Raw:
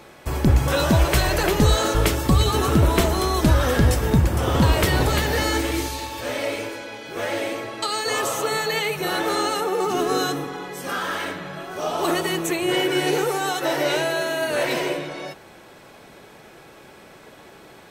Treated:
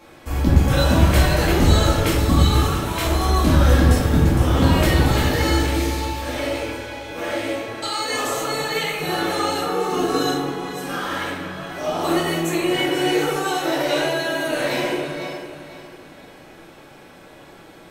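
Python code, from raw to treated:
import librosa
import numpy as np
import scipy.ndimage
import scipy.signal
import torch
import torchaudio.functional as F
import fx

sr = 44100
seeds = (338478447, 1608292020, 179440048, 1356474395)

y = fx.highpass(x, sr, hz=1000.0, slope=6, at=(2.6, 3.05))
y = fx.echo_feedback(y, sr, ms=499, feedback_pct=38, wet_db=-13)
y = fx.room_shoebox(y, sr, seeds[0], volume_m3=260.0, walls='mixed', distance_m=2.2)
y = y * 10.0 ** (-6.5 / 20.0)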